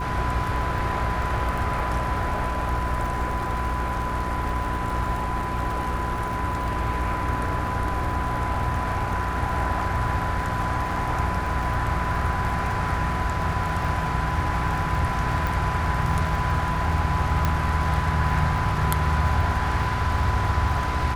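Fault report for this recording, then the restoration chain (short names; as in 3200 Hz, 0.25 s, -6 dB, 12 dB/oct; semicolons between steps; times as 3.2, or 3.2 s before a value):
crackle 53/s -32 dBFS
hum 60 Hz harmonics 7 -30 dBFS
tone 1000 Hz -29 dBFS
15.47 pop
17.45 pop -9 dBFS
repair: de-click; de-hum 60 Hz, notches 7; notch 1000 Hz, Q 30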